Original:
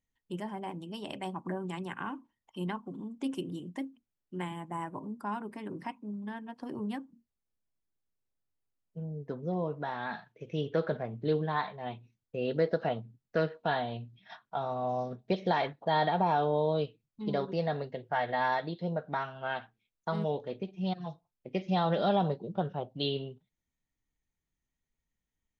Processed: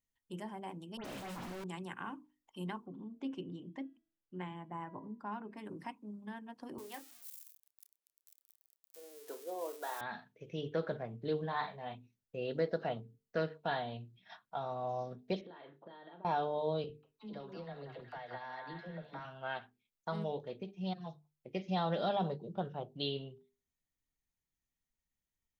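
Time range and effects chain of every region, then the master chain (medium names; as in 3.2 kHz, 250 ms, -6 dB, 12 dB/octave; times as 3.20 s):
0.97–1.64 s: one-bit comparator + treble shelf 4.3 kHz -10 dB + phase dispersion highs, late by 82 ms, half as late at 2.5 kHz
2.86–5.57 s: distance through air 190 m + de-hum 327.8 Hz, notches 10
6.78–10.01 s: zero-crossing glitches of -36.5 dBFS + inverse Chebyshev high-pass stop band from 170 Hz + doubling 29 ms -11 dB
11.40–11.95 s: band-stop 350 Hz, Q 5.9 + doubling 36 ms -7.5 dB
15.41–16.25 s: compression 20:1, threshold -41 dBFS + cabinet simulation 210–3400 Hz, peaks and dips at 330 Hz +6 dB, 770 Hz -9 dB, 2.3 kHz -9 dB + doubling 35 ms -8.5 dB
16.84–19.25 s: compression 12:1, threshold -36 dBFS + phase dispersion lows, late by 62 ms, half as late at 360 Hz + repeats whose band climbs or falls 186 ms, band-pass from 1.2 kHz, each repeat 0.7 oct, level -0.5 dB
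whole clip: treble shelf 5.1 kHz +5 dB; hum notches 50/100/150/200/250/300/350/400/450 Hz; trim -5.5 dB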